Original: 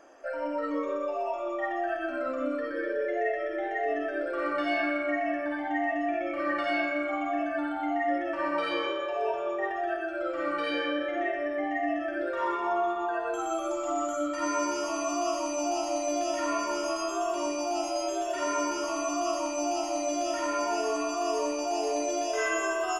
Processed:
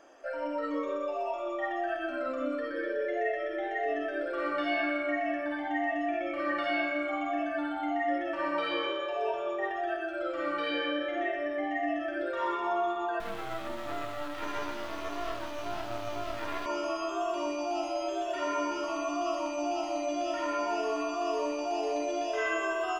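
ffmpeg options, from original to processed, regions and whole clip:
-filter_complex "[0:a]asettb=1/sr,asplit=3[s0][s1][s2];[s0]atrim=end=13.204[s3];[s1]atrim=start=13.2:end=16.66,asetpts=PTS-STARTPTS,afade=t=in:d=0.004:c=qsin,afade=t=out:st=3.456:d=0.004:c=qsin,highpass=230,adynamicsmooth=sensitivity=8:basefreq=3300,acrusher=bits=4:dc=4:mix=0:aa=0.000001[s4];[s2]atrim=start=16.656[s5];[s3][s4]acrossfade=d=0.004:c1=hsin:c2=qsin[s6];[s6][s5]acrossfade=d=0.004:c1=qsin:c2=hsin,acrossover=split=3900[s7][s8];[s8]acompressor=threshold=0.00178:ratio=4:attack=1:release=60[s9];[s7][s9]amix=inputs=2:normalize=0,equalizer=f=3500:w=2:g=5.5,volume=0.794"

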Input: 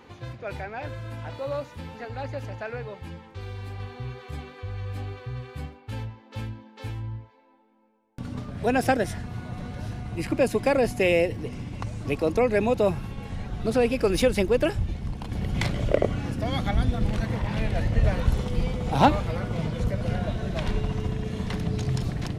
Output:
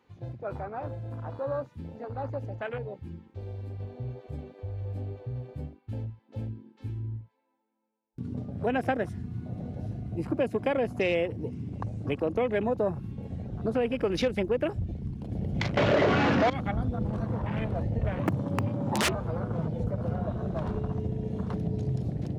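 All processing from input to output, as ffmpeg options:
-filter_complex "[0:a]asettb=1/sr,asplit=3[s0][s1][s2];[s0]atrim=end=15.774[s3];[s1]atrim=start=15.77:end=16.5,asetpts=PTS-STARTPTS,afade=t=in:d=0.004:c=qsin,afade=t=out:st=0.726:d=0.004:c=qsin,acrossover=split=4400[s4][s5];[s5]acompressor=threshold=0.00126:ratio=4:attack=1:release=60[s6];[s4][s6]amix=inputs=2:normalize=0,bandreject=f=60:t=h:w=6,bandreject=f=120:t=h:w=6,bandreject=f=180:t=h:w=6,bandreject=f=240:t=h:w=6,bandreject=f=300:t=h:w=6,bandreject=f=360:t=h:w=6,bandreject=f=420:t=h:w=6,asplit=2[s7][s8];[s8]highpass=f=720:p=1,volume=70.8,asoftclip=type=tanh:threshold=0.473[s9];[s7][s9]amix=inputs=2:normalize=0,lowpass=f=1700:p=1,volume=0.501[s10];[s2]atrim=start=16.496[s11];[s3][s10]acrossfade=d=0.004:c1=hsin:c2=qsin[s12];[s12][s11]acrossfade=d=0.004:c1=qsin:c2=hsin,asettb=1/sr,asplit=3[s13][s14][s15];[s13]atrim=end=18.194[s16];[s14]atrim=start=18.19:end=19.15,asetpts=PTS-STARTPTS,afade=t=in:d=0.004:c=qsin,afade=t=out:st=0.956:d=0.004:c=qsin,equalizer=f=1400:w=6.6:g=-11.5,aeval=exprs='(mod(4.22*val(0)+1,2)-1)/4.22':c=same,afreqshift=72[s17];[s15]atrim=start=19.146[s18];[s16][s17]acrossfade=d=0.004:c1=hsin:c2=qsin[s19];[s19][s18]acrossfade=d=0.004:c1=qsin:c2=hsin,highpass=76,afwtdn=0.0178,acompressor=threshold=0.0447:ratio=2"

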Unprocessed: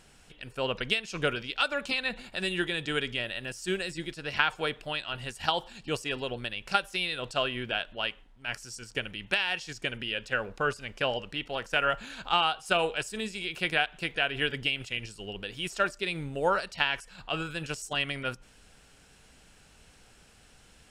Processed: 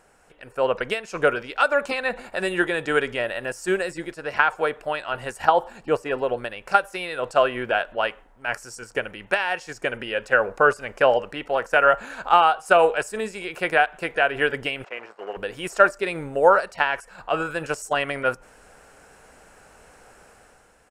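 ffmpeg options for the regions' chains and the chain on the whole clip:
-filter_complex "[0:a]asettb=1/sr,asplit=3[s0][s1][s2];[s0]atrim=end=5.454[s3];[s1]atrim=start=5.45:end=6.29,asetpts=PTS-STARTPTS,afade=t=in:d=0.004:c=qsin,afade=t=out:st=0.836:d=0.004:c=qsin,acrossover=split=4900[s4][s5];[s5]acompressor=threshold=0.00282:ratio=4:attack=1:release=60[s6];[s4][s6]amix=inputs=2:normalize=0,equalizer=f=4900:w=0.43:g=-5[s7];[s2]atrim=start=6.286[s8];[s3][s7]acrossfade=d=0.004:c1=hsin:c2=qsin[s9];[s9][s8]acrossfade=d=0.004:c1=qsin:c2=hsin,asettb=1/sr,asplit=3[s10][s11][s12];[s10]atrim=end=14.844[s13];[s11]atrim=start=14.84:end=15.37,asetpts=PTS-STARTPTS,afade=t=in:d=0.004:c=qsin,afade=t=out:st=0.526:d=0.004:c=qsin,acrusher=bits=8:dc=4:mix=0:aa=0.000001,highpass=430,lowpass=2000[s14];[s12]atrim=start=15.366[s15];[s13][s14]acrossfade=d=0.004:c1=hsin:c2=qsin[s16];[s16][s15]acrossfade=d=0.004:c1=qsin:c2=hsin,highshelf=f=3900:g=9.5,dynaudnorm=f=110:g=9:m=2.37,firequalizer=gain_entry='entry(150,0);entry(510,13);entry(1500,9);entry(3300,-9);entry(7100,-4)':delay=0.05:min_phase=1,volume=0.473"

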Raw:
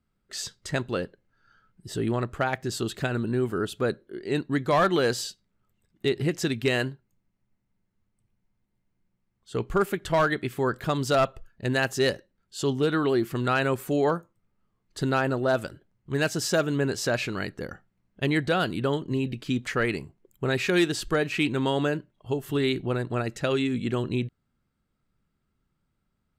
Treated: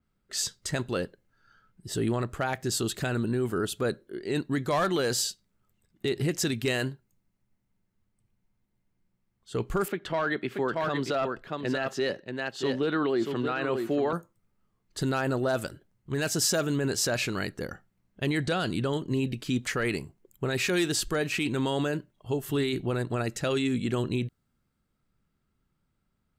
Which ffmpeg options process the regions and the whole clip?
-filter_complex "[0:a]asettb=1/sr,asplit=3[s0][s1][s2];[s0]atrim=end=9.884[s3];[s1]atrim=start=9.88:end=14.13,asetpts=PTS-STARTPTS,afade=t=in:d=0.004:c=qsin,afade=t=out:st=4.246:d=0.004:c=qsin,acrossover=split=160 4300:gain=0.178 1 0.0891[s4][s5][s6];[s4][s5][s6]amix=inputs=3:normalize=0,aecho=1:1:631:0.422,atrim=end_sample=187425[s7];[s2]atrim=start=14.126[s8];[s3][s7]acrossfade=d=0.004:c1=hsin:c2=qsin[s9];[s9][s8]acrossfade=d=0.004:c1=qsin:c2=hsin,asettb=1/sr,asplit=3[s10][s11][s12];[s10]atrim=end=18.404[s13];[s11]atrim=start=18.4:end=18.93,asetpts=PTS-STARTPTS,afade=t=in:d=0.004:c=qsin,afade=t=out:st=0.526:d=0.004:c=qsin,lowpass=8100,bass=f=250:g=2,treble=f=4000:g=3[s14];[s12]atrim=start=18.926[s15];[s13][s14]acrossfade=d=0.004:c1=hsin:c2=qsin[s16];[s16][s15]acrossfade=d=0.004:c1=qsin:c2=hsin,alimiter=limit=0.112:level=0:latency=1:release=14,adynamicequalizer=threshold=0.00398:dfrequency=4800:dqfactor=0.7:tfrequency=4800:tqfactor=0.7:attack=5:release=100:ratio=0.375:range=3.5:mode=boostabove:tftype=highshelf"

